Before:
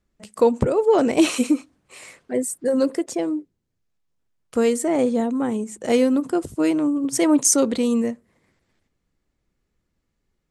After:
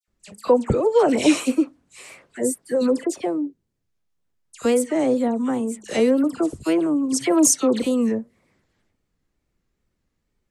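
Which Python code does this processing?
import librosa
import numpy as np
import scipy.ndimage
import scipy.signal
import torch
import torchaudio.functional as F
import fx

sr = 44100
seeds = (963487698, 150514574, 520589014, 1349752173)

y = fx.dispersion(x, sr, late='lows', ms=82.0, hz=2000.0)
y = fx.wow_flutter(y, sr, seeds[0], rate_hz=2.1, depth_cents=97.0)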